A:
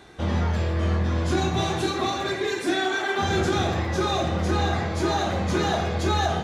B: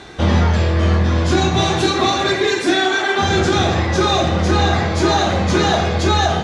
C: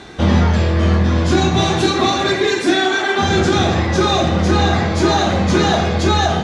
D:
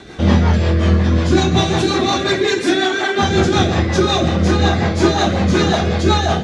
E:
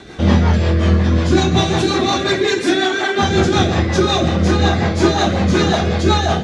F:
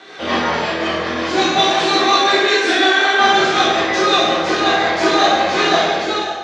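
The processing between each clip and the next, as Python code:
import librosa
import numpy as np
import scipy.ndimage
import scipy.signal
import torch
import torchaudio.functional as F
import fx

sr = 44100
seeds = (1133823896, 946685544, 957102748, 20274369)

y1 = scipy.signal.sosfilt(scipy.signal.butter(2, 6200.0, 'lowpass', fs=sr, output='sos'), x)
y1 = fx.high_shelf(y1, sr, hz=4500.0, db=7.0)
y1 = fx.rider(y1, sr, range_db=10, speed_s=0.5)
y1 = F.gain(torch.from_numpy(y1), 8.0).numpy()
y2 = fx.peak_eq(y1, sr, hz=220.0, db=4.0, octaves=0.93)
y3 = fx.rotary(y2, sr, hz=5.5)
y3 = F.gain(torch.from_numpy(y3), 2.0).numpy()
y4 = y3
y5 = fx.fade_out_tail(y4, sr, length_s=0.59)
y5 = fx.bandpass_edges(y5, sr, low_hz=530.0, high_hz=5200.0)
y5 = fx.rev_plate(y5, sr, seeds[0], rt60_s=0.96, hf_ratio=0.85, predelay_ms=0, drr_db=-6.5)
y5 = F.gain(torch.from_numpy(y5), -1.5).numpy()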